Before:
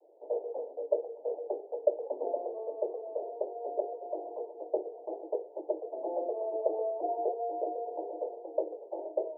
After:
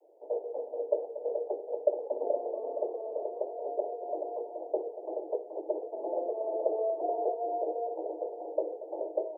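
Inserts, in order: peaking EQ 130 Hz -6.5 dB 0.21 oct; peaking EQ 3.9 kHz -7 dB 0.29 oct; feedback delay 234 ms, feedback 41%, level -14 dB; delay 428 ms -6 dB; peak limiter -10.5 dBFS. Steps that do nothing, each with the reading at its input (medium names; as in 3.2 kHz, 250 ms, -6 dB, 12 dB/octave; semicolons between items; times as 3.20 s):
peaking EQ 130 Hz: input has nothing below 250 Hz; peaking EQ 3.9 kHz: input has nothing above 960 Hz; peak limiter -10.5 dBFS: peak at its input -12.5 dBFS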